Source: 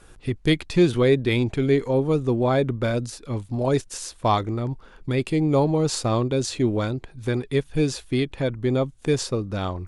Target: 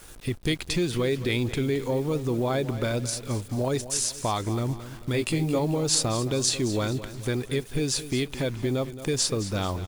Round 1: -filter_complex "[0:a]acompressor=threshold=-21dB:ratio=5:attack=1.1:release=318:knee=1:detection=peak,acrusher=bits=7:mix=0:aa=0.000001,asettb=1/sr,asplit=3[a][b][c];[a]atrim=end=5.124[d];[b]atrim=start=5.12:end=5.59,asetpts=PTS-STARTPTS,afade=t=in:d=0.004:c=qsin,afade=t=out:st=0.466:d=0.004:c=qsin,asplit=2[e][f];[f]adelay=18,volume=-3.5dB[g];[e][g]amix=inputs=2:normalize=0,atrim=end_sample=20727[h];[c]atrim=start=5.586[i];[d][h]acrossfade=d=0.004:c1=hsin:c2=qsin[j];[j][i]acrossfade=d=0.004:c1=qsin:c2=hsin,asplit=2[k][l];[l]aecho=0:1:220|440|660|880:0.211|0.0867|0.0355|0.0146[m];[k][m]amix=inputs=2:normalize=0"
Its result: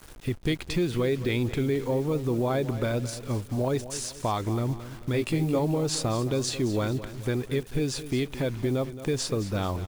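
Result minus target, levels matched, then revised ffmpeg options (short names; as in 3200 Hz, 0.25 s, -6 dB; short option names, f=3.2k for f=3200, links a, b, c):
8000 Hz band -6.5 dB
-filter_complex "[0:a]acompressor=threshold=-21dB:ratio=5:attack=1.1:release=318:knee=1:detection=peak,highshelf=f=3.5k:g=9.5,acrusher=bits=7:mix=0:aa=0.000001,asettb=1/sr,asplit=3[a][b][c];[a]atrim=end=5.124[d];[b]atrim=start=5.12:end=5.59,asetpts=PTS-STARTPTS,afade=t=in:d=0.004:c=qsin,afade=t=out:st=0.466:d=0.004:c=qsin,asplit=2[e][f];[f]adelay=18,volume=-3.5dB[g];[e][g]amix=inputs=2:normalize=0,atrim=end_sample=20727[h];[c]atrim=start=5.586[i];[d][h]acrossfade=d=0.004:c1=hsin:c2=qsin[j];[j][i]acrossfade=d=0.004:c1=qsin:c2=hsin,asplit=2[k][l];[l]aecho=0:1:220|440|660|880:0.211|0.0867|0.0355|0.0146[m];[k][m]amix=inputs=2:normalize=0"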